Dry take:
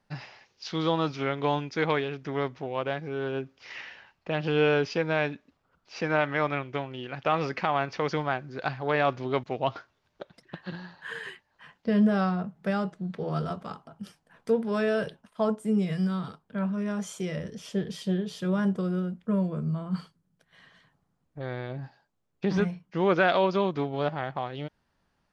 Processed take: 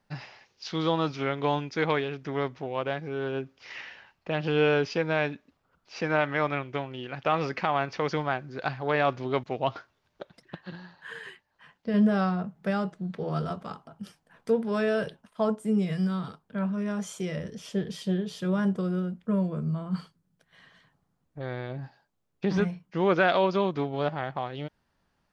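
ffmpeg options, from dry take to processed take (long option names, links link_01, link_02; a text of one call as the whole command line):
ffmpeg -i in.wav -filter_complex "[0:a]asplit=3[link_01][link_02][link_03];[link_01]atrim=end=10.552[link_04];[link_02]atrim=start=10.548:end=11.942,asetpts=PTS-STARTPTS,volume=-3.5dB[link_05];[link_03]atrim=start=11.938[link_06];[link_04][link_05]acrossfade=duration=0.004:curve1=hsin:curve2=hsin[link_07];[link_07][link_06]acrossfade=duration=0.004:curve1=hsin:curve2=hsin" out.wav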